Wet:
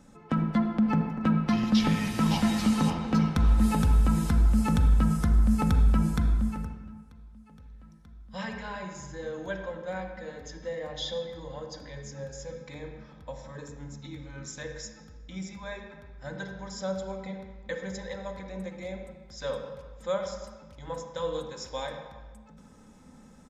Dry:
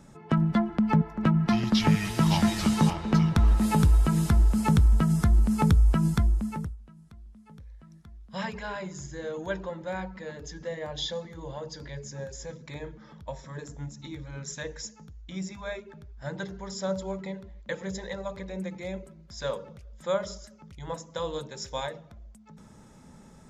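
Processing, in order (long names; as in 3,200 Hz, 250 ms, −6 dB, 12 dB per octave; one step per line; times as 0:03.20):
comb filter 3.9 ms, depth 40%
on a send: convolution reverb RT60 1.4 s, pre-delay 36 ms, DRR 5 dB
on the sum: level −3.5 dB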